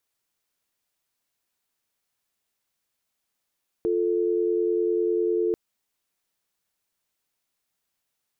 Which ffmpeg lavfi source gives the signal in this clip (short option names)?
-f lavfi -i "aevalsrc='0.0668*(sin(2*PI*350*t)+sin(2*PI*440*t))':d=1.69:s=44100"